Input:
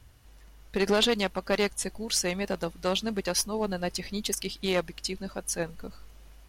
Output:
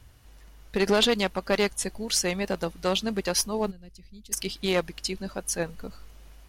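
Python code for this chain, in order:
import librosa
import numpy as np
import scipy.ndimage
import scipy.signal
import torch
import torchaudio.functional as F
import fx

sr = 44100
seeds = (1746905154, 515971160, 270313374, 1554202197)

y = fx.tone_stack(x, sr, knobs='10-0-1', at=(3.7, 4.31), fade=0.02)
y = F.gain(torch.from_numpy(y), 2.0).numpy()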